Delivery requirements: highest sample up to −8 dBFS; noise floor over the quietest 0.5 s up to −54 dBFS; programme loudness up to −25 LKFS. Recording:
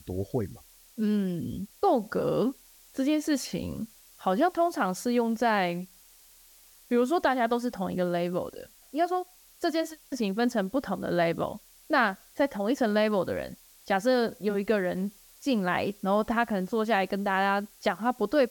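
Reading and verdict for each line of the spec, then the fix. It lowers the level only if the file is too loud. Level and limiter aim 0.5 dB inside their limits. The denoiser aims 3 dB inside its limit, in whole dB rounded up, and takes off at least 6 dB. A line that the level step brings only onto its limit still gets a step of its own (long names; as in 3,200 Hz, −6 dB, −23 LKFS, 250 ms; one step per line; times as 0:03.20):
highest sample −12.0 dBFS: in spec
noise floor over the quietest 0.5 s −56 dBFS: in spec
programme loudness −28.5 LKFS: in spec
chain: no processing needed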